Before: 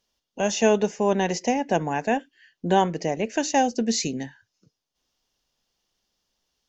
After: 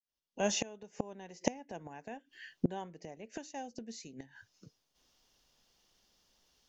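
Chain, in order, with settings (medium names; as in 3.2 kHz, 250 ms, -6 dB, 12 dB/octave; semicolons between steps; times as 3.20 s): fade-in on the opening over 1.78 s; inverted gate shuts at -21 dBFS, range -27 dB; trim +4.5 dB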